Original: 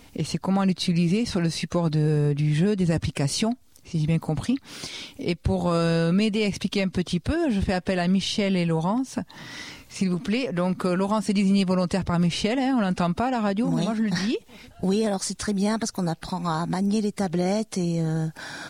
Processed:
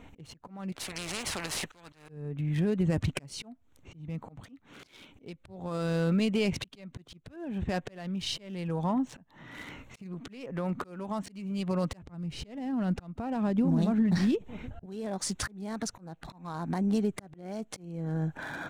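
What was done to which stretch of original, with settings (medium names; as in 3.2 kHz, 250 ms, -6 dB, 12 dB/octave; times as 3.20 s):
0.72–2.09 s: spectrum-flattening compressor 4:1
12.06–14.86 s: bass shelf 410 Hz +9.5 dB
whole clip: local Wiener filter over 9 samples; compression 4:1, threshold -24 dBFS; slow attack 618 ms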